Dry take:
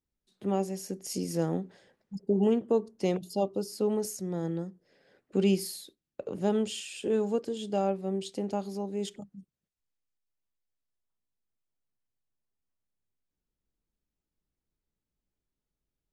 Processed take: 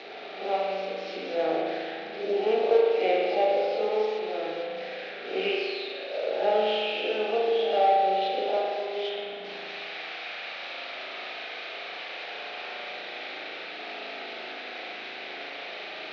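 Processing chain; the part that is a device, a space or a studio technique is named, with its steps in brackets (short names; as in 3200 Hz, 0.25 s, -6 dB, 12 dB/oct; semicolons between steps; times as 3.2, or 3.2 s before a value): spectral swells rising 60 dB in 0.48 s; 4.04–4.46 HPF 150 Hz 12 dB/oct; digital answering machine (BPF 400–3300 Hz; delta modulation 32 kbps, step -40.5 dBFS; speaker cabinet 410–4400 Hz, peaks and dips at 710 Hz +8 dB, 1000 Hz -10 dB, 2400 Hz +7 dB, 3900 Hz +6 dB); spring tank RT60 2 s, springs 37 ms, chirp 30 ms, DRR -3.5 dB; gain +3 dB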